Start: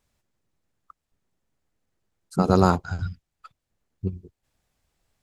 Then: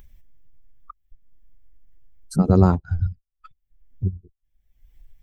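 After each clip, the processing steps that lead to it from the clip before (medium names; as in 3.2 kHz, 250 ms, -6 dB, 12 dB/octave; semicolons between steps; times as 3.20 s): expander on every frequency bin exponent 1.5; tilt EQ -3.5 dB/octave; upward compressor, threshold -18 dBFS; trim -3 dB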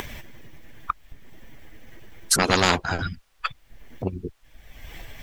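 overdrive pedal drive 20 dB, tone 2.1 kHz, clips at -1 dBFS; spectrum-flattening compressor 4:1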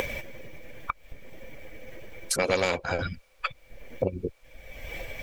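compression 5:1, threshold -27 dBFS, peak gain reduction 12 dB; small resonant body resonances 530/2300 Hz, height 16 dB, ringing for 35 ms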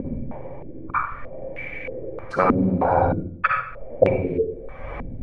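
reverberation RT60 0.65 s, pre-delay 45 ms, DRR -0.5 dB; step-sequenced low-pass 3.2 Hz 240–2300 Hz; trim +4 dB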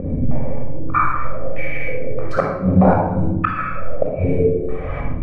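inverted gate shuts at -8 dBFS, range -27 dB; simulated room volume 3600 m³, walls furnished, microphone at 6.3 m; trim +1 dB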